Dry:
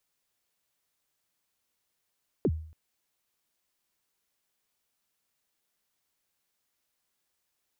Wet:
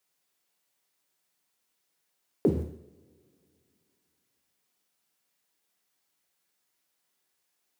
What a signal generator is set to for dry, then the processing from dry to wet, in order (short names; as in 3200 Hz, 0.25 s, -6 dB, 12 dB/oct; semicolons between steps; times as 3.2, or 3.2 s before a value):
kick drum length 0.28 s, from 490 Hz, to 79 Hz, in 53 ms, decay 0.53 s, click off, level -19.5 dB
HPF 130 Hz 12 dB/oct; in parallel at -5.5 dB: bit-crush 8-bit; on the sum: two-slope reverb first 0.64 s, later 2.9 s, from -26 dB, DRR 2 dB